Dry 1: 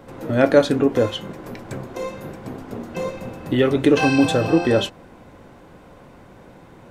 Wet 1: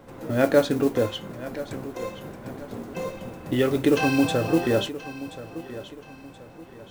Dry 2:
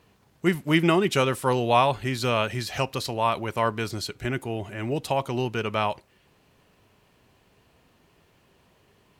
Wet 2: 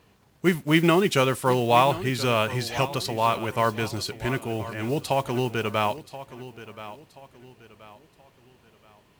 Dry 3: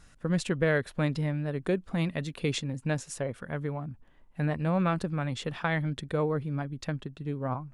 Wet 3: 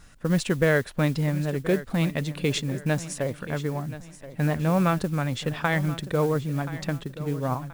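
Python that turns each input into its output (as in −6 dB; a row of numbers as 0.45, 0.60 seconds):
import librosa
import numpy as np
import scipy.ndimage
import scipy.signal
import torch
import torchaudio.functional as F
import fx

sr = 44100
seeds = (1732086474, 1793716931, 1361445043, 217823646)

y = fx.mod_noise(x, sr, seeds[0], snr_db=24)
y = fx.echo_feedback(y, sr, ms=1028, feedback_pct=36, wet_db=-15)
y = y * 10.0 ** (-26 / 20.0) / np.sqrt(np.mean(np.square(y)))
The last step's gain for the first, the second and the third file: −4.5, +1.0, +4.5 decibels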